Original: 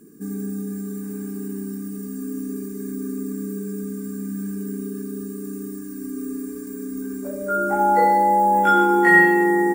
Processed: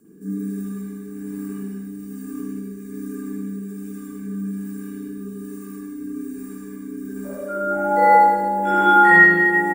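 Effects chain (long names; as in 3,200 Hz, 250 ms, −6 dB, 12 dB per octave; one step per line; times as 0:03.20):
single-tap delay 78 ms −4 dB
rotating-speaker cabinet horn 1.2 Hz
spring reverb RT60 1.1 s, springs 41/47/57 ms, chirp 25 ms, DRR −7.5 dB
level −4.5 dB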